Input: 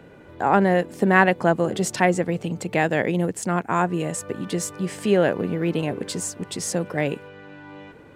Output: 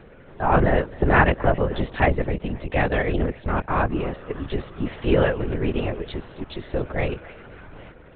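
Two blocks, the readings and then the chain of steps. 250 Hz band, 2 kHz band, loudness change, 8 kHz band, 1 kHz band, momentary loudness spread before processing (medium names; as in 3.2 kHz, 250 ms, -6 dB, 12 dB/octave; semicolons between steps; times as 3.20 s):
-3.0 dB, -1.0 dB, -1.0 dB, under -40 dB, -1.0 dB, 11 LU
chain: thinning echo 270 ms, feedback 40%, high-pass 680 Hz, level -18 dB; LPC vocoder at 8 kHz whisper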